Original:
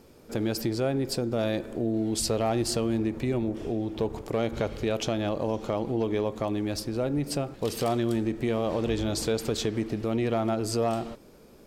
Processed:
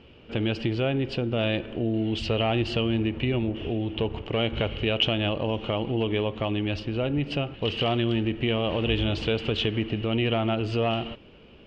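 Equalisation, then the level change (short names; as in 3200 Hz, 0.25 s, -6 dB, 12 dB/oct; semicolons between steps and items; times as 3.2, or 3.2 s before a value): synth low-pass 2900 Hz, resonance Q 12; air absorption 71 m; bell 78 Hz +7.5 dB 1.5 oct; 0.0 dB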